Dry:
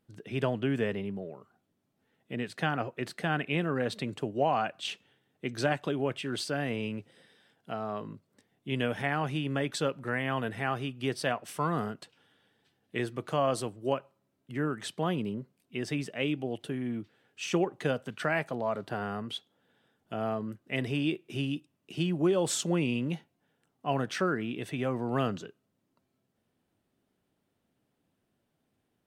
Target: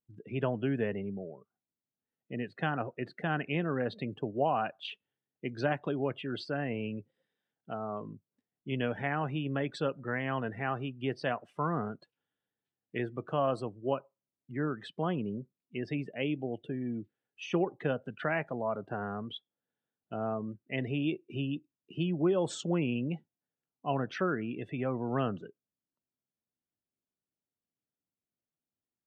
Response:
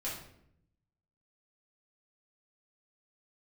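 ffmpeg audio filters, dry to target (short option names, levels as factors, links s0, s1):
-af "aemphasis=mode=reproduction:type=50fm,afftdn=nr=20:nf=-44,volume=0.794"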